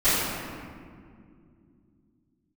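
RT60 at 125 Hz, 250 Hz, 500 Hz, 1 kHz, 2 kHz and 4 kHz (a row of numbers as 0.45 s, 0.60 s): 3.8 s, 3.9 s, 2.8 s, 1.9 s, 1.7 s, 1.2 s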